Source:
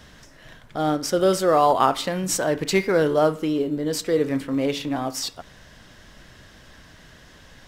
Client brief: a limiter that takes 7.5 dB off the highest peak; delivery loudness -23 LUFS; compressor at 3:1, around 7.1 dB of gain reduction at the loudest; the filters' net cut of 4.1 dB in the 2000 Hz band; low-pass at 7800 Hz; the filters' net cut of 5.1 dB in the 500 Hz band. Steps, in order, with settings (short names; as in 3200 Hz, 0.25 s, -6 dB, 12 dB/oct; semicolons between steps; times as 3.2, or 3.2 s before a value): LPF 7800 Hz; bell 500 Hz -6 dB; bell 2000 Hz -5 dB; compressor 3:1, threshold -26 dBFS; gain +9 dB; limiter -13.5 dBFS